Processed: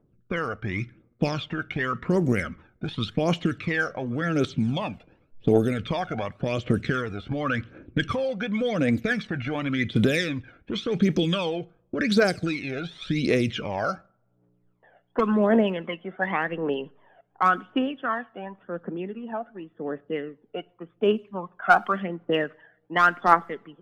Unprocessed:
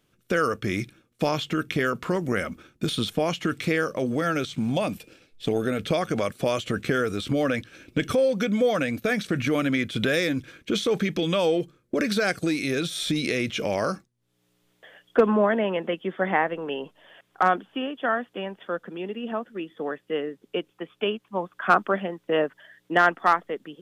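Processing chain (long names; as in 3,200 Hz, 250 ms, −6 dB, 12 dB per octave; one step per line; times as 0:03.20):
phase shifter 0.9 Hz, delay 1.5 ms, feedback 67%
coupled-rooms reverb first 0.49 s, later 2 s, from −25 dB, DRR 20 dB
low-pass that shuts in the quiet parts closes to 790 Hz, open at −14.5 dBFS
level −2.5 dB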